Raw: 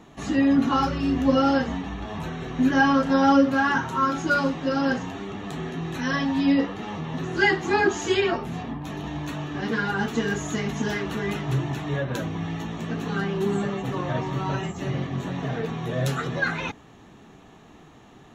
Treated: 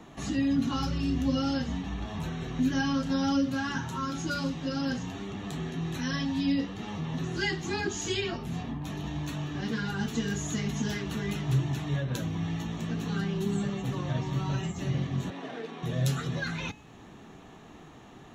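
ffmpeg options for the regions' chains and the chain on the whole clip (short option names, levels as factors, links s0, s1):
-filter_complex "[0:a]asettb=1/sr,asplit=3[s0][s1][s2];[s0]atrim=end=15.304[s3];[s1]atrim=start=15.3:end=15.83,asetpts=PTS-STARTPTS,afade=t=in:d=0.004:c=qsin,afade=t=out:st=0.526:d=0.004:c=qsin,highpass=f=270:w=0.5412,highpass=f=270:w=1.3066,adynamicsmooth=sensitivity=5:basefreq=3800[s4];[s2]atrim=start=15.826[s5];[s3][s4]acrossfade=d=0.004:c1=hsin:c2=qsin[s6];[s6][s5]acrossfade=d=0.004:c1=qsin:c2=hsin,bandreject=f=426.9:t=h:w=4,bandreject=f=853.8:t=h:w=4,bandreject=f=1280.7:t=h:w=4,bandreject=f=1707.6:t=h:w=4,bandreject=f=2134.5:t=h:w=4,bandreject=f=2561.4:t=h:w=4,bandreject=f=2988.3:t=h:w=4,bandreject=f=3415.2:t=h:w=4,bandreject=f=3842.1:t=h:w=4,bandreject=f=4269:t=h:w=4,bandreject=f=4695.9:t=h:w=4,bandreject=f=5122.8:t=h:w=4,bandreject=f=5549.7:t=h:w=4,bandreject=f=5976.6:t=h:w=4,bandreject=f=6403.5:t=h:w=4,bandreject=f=6830.4:t=h:w=4,bandreject=f=7257.3:t=h:w=4,bandreject=f=7684.2:t=h:w=4,bandreject=f=8111.1:t=h:w=4,bandreject=f=8538:t=h:w=4,bandreject=f=8964.9:t=h:w=4,bandreject=f=9391.8:t=h:w=4,bandreject=f=9818.7:t=h:w=4,bandreject=f=10245.6:t=h:w=4,bandreject=f=10672.5:t=h:w=4,bandreject=f=11099.4:t=h:w=4,bandreject=f=11526.3:t=h:w=4,bandreject=f=11953.2:t=h:w=4,bandreject=f=12380.1:t=h:w=4,acrossover=split=220|3000[s7][s8][s9];[s8]acompressor=threshold=0.00562:ratio=2[s10];[s7][s10][s9]amix=inputs=3:normalize=0"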